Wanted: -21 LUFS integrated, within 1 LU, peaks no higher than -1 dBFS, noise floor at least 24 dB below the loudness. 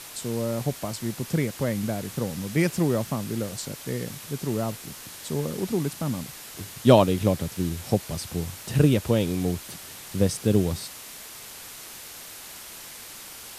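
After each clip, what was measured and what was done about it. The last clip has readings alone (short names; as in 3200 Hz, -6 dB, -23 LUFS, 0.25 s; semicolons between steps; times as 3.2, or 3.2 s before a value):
noise floor -42 dBFS; noise floor target -50 dBFS; loudness -26.0 LUFS; peak -2.0 dBFS; loudness target -21.0 LUFS
-> denoiser 8 dB, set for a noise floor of -42 dBFS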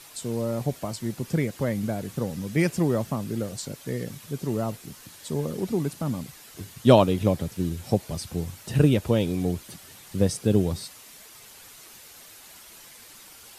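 noise floor -48 dBFS; noise floor target -51 dBFS
-> denoiser 6 dB, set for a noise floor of -48 dBFS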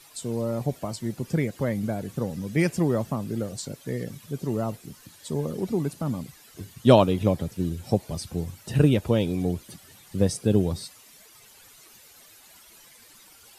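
noise floor -53 dBFS; loudness -26.5 LUFS; peak -2.0 dBFS; loudness target -21.0 LUFS
-> gain +5.5 dB; limiter -1 dBFS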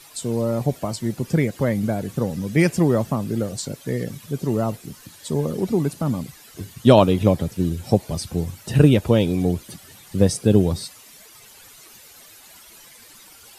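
loudness -21.5 LUFS; peak -1.0 dBFS; noise floor -47 dBFS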